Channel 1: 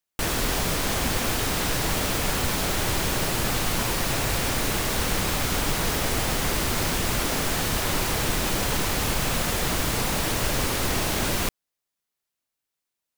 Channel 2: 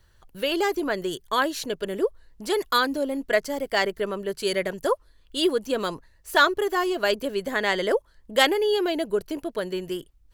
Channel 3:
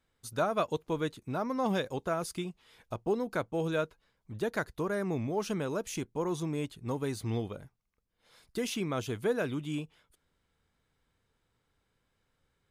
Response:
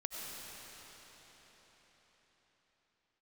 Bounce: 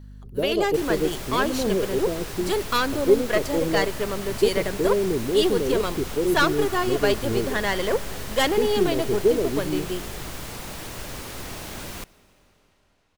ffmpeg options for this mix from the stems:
-filter_complex "[0:a]adelay=550,volume=0.282,asplit=2[s0][s1];[s1]volume=0.106[s2];[1:a]aeval=exprs='val(0)+0.00891*(sin(2*PI*50*n/s)+sin(2*PI*2*50*n/s)/2+sin(2*PI*3*50*n/s)/3+sin(2*PI*4*50*n/s)/4+sin(2*PI*5*50*n/s)/5)':c=same,aeval=exprs='(tanh(5.62*val(0)+0.45)-tanh(0.45))/5.62':c=same,volume=1.06,asplit=2[s3][s4];[s4]volume=0.178[s5];[2:a]lowpass=f=410:t=q:w=4.4,volume=1.19[s6];[3:a]atrim=start_sample=2205[s7];[s2][s5]amix=inputs=2:normalize=0[s8];[s8][s7]afir=irnorm=-1:irlink=0[s9];[s0][s3][s6][s9]amix=inputs=4:normalize=0"

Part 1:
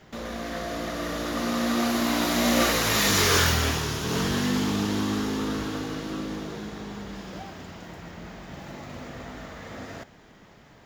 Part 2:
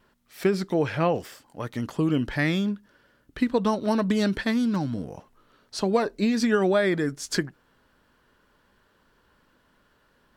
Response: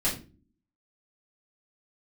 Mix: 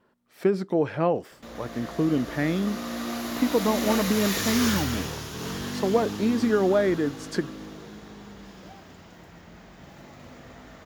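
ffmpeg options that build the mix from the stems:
-filter_complex "[0:a]highshelf=f=11000:g=5,adelay=1300,volume=0.447[s0];[1:a]highpass=f=310:p=1,tiltshelf=f=1200:g=7,volume=0.75[s1];[s0][s1]amix=inputs=2:normalize=0"

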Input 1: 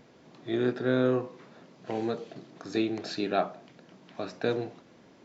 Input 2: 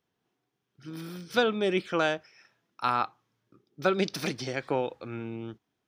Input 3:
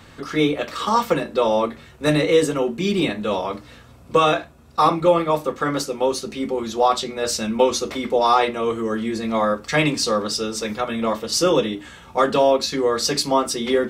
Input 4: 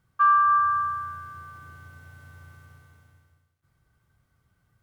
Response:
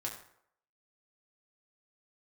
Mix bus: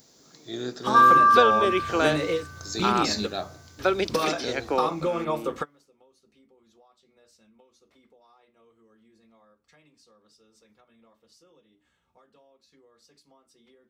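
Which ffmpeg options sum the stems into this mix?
-filter_complex "[0:a]highshelf=f=7000:g=11,aexciter=amount=3.9:drive=8.9:freq=3900,volume=0.501[s0];[1:a]highpass=f=250:w=0.5412,highpass=f=250:w=1.3066,volume=1.33,asplit=2[s1][s2];[2:a]acompressor=threshold=0.0447:ratio=6,volume=1.33[s3];[3:a]adelay=750,volume=1.41[s4];[s2]apad=whole_len=612918[s5];[s3][s5]sidechaingate=range=0.0224:threshold=0.00251:ratio=16:detection=peak[s6];[s0][s1][s6][s4]amix=inputs=4:normalize=0"

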